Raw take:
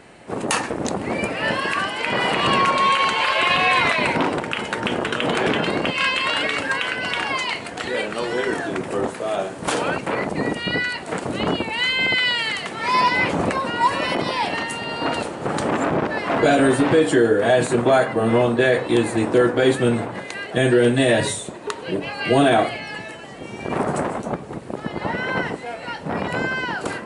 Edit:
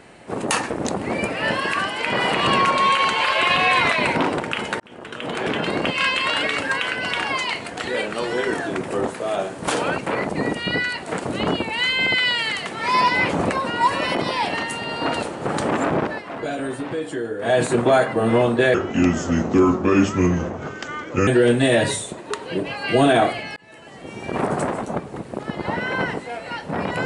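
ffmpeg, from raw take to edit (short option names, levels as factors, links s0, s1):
-filter_complex "[0:a]asplit=7[s0][s1][s2][s3][s4][s5][s6];[s0]atrim=end=4.8,asetpts=PTS-STARTPTS,afade=t=out:st=4.796:d=0.004:c=hsin[s7];[s1]atrim=start=4.8:end=16.23,asetpts=PTS-STARTPTS,afade=t=in:d=1.05,afade=t=out:st=11.17:d=0.26:c=qsin:silence=0.281838[s8];[s2]atrim=start=16.23:end=17.39,asetpts=PTS-STARTPTS,volume=0.282[s9];[s3]atrim=start=17.39:end=18.744,asetpts=PTS-STARTPTS,afade=t=in:d=0.26:c=qsin:silence=0.281838[s10];[s4]atrim=start=18.74:end=20.64,asetpts=PTS-STARTPTS,asetrate=33075,aresample=44100[s11];[s5]atrim=start=20.636:end=22.93,asetpts=PTS-STARTPTS,afade=t=out:st=2.29:d=0.004:c=hsin[s12];[s6]atrim=start=22.93,asetpts=PTS-STARTPTS,afade=t=in:d=0.78:c=qsin[s13];[s7][s8][s9][s10]concat=n=4:v=0:a=1[s14];[s14][s11]acrossfade=d=0.004:c1=hsin:c2=hsin[s15];[s12][s13]concat=n=2:v=0:a=1[s16];[s15][s16]acrossfade=d=0.004:c1=hsin:c2=hsin"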